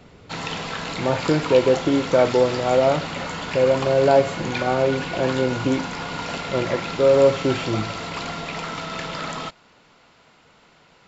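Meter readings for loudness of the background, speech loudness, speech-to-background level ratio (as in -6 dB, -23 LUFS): -29.0 LUFS, -20.5 LUFS, 8.5 dB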